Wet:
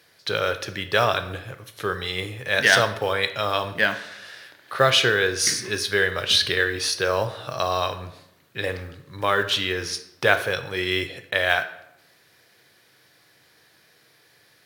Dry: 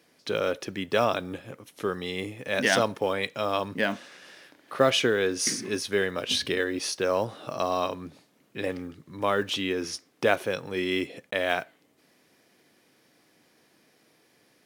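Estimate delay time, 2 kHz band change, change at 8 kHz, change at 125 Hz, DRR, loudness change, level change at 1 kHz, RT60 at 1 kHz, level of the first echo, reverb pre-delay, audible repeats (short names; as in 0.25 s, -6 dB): none, +8.5 dB, +5.0 dB, +7.0 dB, 9.0 dB, +5.0 dB, +4.5 dB, 0.80 s, none, 11 ms, none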